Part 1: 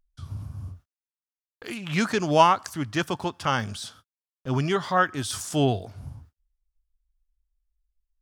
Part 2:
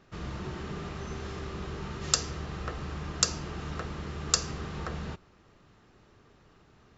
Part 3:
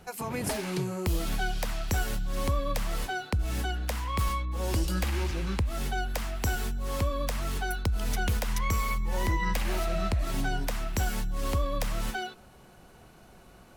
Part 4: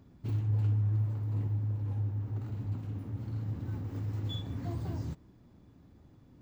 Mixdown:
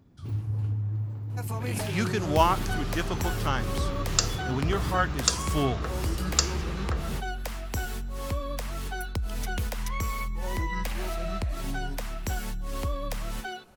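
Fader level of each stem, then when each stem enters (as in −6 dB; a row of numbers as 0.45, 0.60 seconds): −5.0, +1.5, −2.5, −1.0 decibels; 0.00, 2.05, 1.30, 0.00 seconds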